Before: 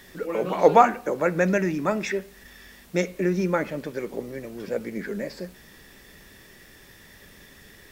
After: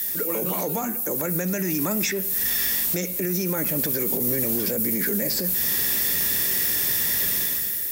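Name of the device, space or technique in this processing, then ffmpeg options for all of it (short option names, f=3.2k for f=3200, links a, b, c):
FM broadcast chain: -filter_complex "[0:a]highpass=67,dynaudnorm=f=110:g=9:m=12dB,acrossover=split=320|6600[a][b][c];[a]acompressor=threshold=-29dB:ratio=4[d];[b]acompressor=threshold=-33dB:ratio=4[e];[c]acompressor=threshold=-55dB:ratio=4[f];[d][e][f]amix=inputs=3:normalize=0,aemphasis=mode=production:type=50fm,alimiter=limit=-23dB:level=0:latency=1:release=20,asoftclip=type=hard:threshold=-24.5dB,lowpass=f=15k:w=0.5412,lowpass=f=15k:w=1.3066,aemphasis=mode=production:type=50fm,volume=4dB"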